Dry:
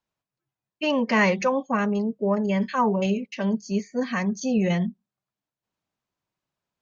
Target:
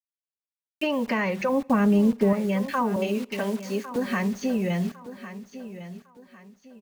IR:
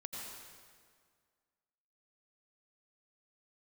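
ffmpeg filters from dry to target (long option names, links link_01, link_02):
-filter_complex "[0:a]acrusher=bits=6:mix=0:aa=0.000001,acrossover=split=3500[link_01][link_02];[link_02]acompressor=threshold=-45dB:ratio=4:attack=1:release=60[link_03];[link_01][link_03]amix=inputs=2:normalize=0,asettb=1/sr,asplit=3[link_04][link_05][link_06];[link_04]atrim=end=2.964[link_07];[link_05]atrim=start=2.96:end=3.96,asetpts=PTS-STARTPTS,afade=type=in:duration=0.004:curve=qsin,afade=type=out:start_time=0.996:duration=0.004:curve=qsin,highpass=frequency=250:width=0.5412,highpass=frequency=250:width=1.3066[link_08];[link_06]atrim=start=3.956[link_09];[link_07][link_08]acrossfade=duration=0.004:curve1=hsin:curve2=qsin[link_10];[link_10][link_09]acrossfade=duration=0.004:curve1=qsin:curve2=hsin,acompressor=threshold=-26dB:ratio=6,asettb=1/sr,asplit=3[link_11][link_12][link_13];[link_11]atrim=end=1.494[link_14];[link_12]atrim=start=1.49:end=2.33,asetpts=PTS-STARTPTS,afade=type=in:duration=0.004:curve=qsin,afade=type=out:start_time=0.836:duration=0.004:curve=qsin,lowshelf=frequency=350:gain=10[link_15];[link_13]atrim=start=2.326[link_16];[link_14][link_15]acrossfade=duration=0.004:curve1=hsin:curve2=qsin[link_17];[link_17][link_16]acrossfade=duration=0.004:curve1=qsin:curve2=hsin,aecho=1:1:1104|2208|3312:0.211|0.0676|0.0216,asplit=2[link_18][link_19];[1:a]atrim=start_sample=2205,asetrate=83790,aresample=44100[link_20];[link_19][link_20]afir=irnorm=-1:irlink=0,volume=-16.5dB[link_21];[link_18][link_21]amix=inputs=2:normalize=0,volume=3dB"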